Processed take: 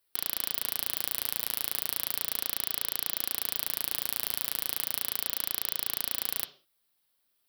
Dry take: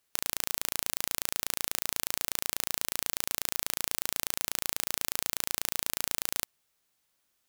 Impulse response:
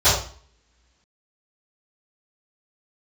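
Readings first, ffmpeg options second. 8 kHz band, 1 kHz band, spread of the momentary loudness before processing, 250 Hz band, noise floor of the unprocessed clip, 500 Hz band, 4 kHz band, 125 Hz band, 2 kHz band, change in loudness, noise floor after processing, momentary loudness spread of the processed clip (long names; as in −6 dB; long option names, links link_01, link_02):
−3.5 dB, −3.0 dB, 0 LU, −2.5 dB, −76 dBFS, −2.5 dB, −1.0 dB, −3.5 dB, −3.0 dB, +1.0 dB, −75 dBFS, 0 LU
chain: -filter_complex "[0:a]flanger=delay=1.9:depth=6.6:regen=-38:speed=0.35:shape=triangular,aexciter=amount=1.3:drive=2.1:freq=3700,asplit=2[link_01][link_02];[link_02]highpass=frequency=170:width=0.5412,highpass=frequency=170:width=1.3066,equalizer=frequency=300:width_type=q:width=4:gain=8,equalizer=frequency=430:width_type=q:width=4:gain=4,equalizer=frequency=880:width_type=q:width=4:gain=-9,equalizer=frequency=3100:width_type=q:width=4:gain=10,lowpass=frequency=5200:width=0.5412,lowpass=frequency=5200:width=1.3066[link_03];[1:a]atrim=start_sample=2205,afade=type=out:start_time=0.26:duration=0.01,atrim=end_sample=11907[link_04];[link_03][link_04]afir=irnorm=-1:irlink=0,volume=-29.5dB[link_05];[link_01][link_05]amix=inputs=2:normalize=0"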